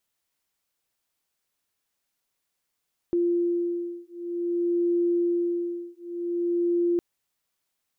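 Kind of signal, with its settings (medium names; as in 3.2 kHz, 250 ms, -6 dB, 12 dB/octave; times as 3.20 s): beating tones 346 Hz, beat 0.53 Hz, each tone -26 dBFS 3.86 s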